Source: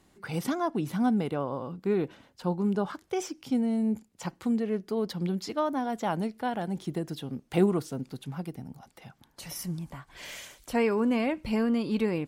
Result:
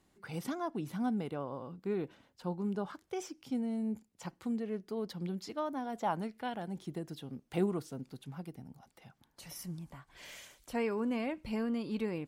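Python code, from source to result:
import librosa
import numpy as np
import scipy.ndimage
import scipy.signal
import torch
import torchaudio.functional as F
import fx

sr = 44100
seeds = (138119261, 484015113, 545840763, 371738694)

y = fx.peak_eq(x, sr, hz=fx.line((5.93, 570.0), (6.53, 3300.0)), db=7.0, octaves=1.0, at=(5.93, 6.53), fade=0.02)
y = y * librosa.db_to_amplitude(-8.0)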